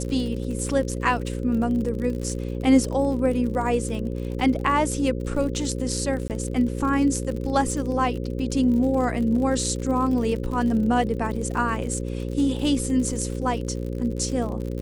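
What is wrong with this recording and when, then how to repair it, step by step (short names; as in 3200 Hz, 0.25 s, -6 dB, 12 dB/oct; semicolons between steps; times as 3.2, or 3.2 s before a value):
buzz 60 Hz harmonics 9 -29 dBFS
crackle 53/s -31 dBFS
6.28–6.3 gap 18 ms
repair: de-click; de-hum 60 Hz, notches 9; interpolate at 6.28, 18 ms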